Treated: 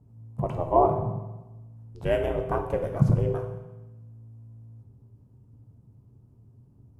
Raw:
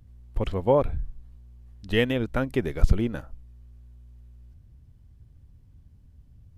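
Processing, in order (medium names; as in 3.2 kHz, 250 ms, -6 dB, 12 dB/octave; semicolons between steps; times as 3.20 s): ring modulator 180 Hz; graphic EQ 125/250/500/1000/2000/4000 Hz +8/-11/+6/+11/-7/-9 dB; reverberation RT60 1.0 s, pre-delay 7 ms, DRR 3.5 dB; tape speed -6%; trim -3 dB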